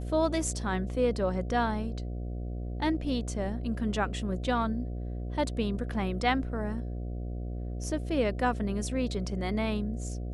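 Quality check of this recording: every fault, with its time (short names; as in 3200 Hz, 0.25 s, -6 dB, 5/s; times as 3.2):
buzz 60 Hz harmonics 12 -35 dBFS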